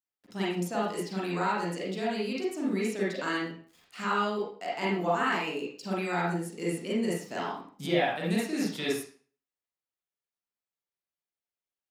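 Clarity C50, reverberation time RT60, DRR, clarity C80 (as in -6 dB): 0.5 dB, 0.45 s, -6.5 dB, 6.5 dB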